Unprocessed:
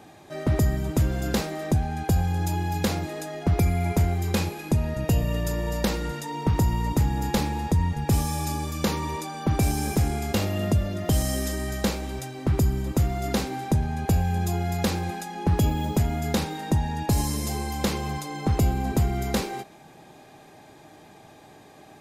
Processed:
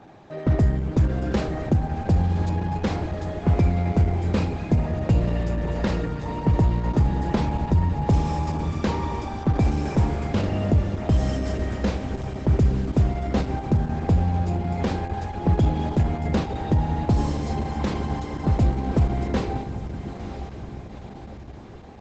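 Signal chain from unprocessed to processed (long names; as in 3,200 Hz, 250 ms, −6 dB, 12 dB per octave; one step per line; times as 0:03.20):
head-to-tape spacing loss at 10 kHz 22 dB
on a send: feedback delay with all-pass diffusion 936 ms, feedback 54%, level −10 dB
on the sum: level +3 dB
Opus 10 kbit/s 48,000 Hz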